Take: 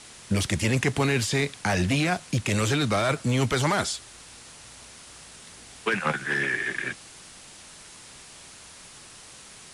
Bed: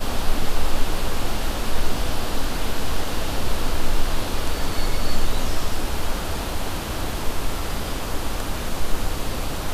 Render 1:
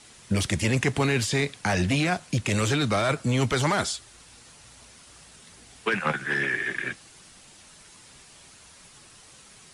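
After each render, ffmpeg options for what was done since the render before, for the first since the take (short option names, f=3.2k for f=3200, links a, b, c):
-af "afftdn=nr=6:nf=-47"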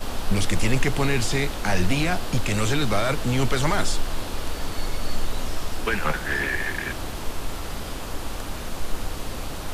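-filter_complex "[1:a]volume=-5dB[a];[0:a][a]amix=inputs=2:normalize=0"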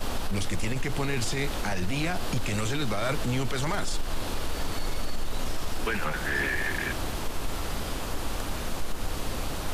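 -af "acompressor=threshold=-20dB:ratio=6,alimiter=limit=-19dB:level=0:latency=1:release=13"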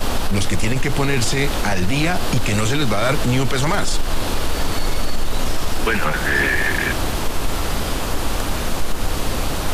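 -af "volume=10dB"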